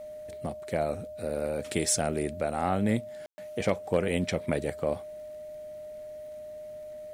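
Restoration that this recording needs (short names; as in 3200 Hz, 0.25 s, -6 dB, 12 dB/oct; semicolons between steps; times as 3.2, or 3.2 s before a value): clip repair -13 dBFS; de-click; notch 610 Hz, Q 30; room tone fill 3.26–3.38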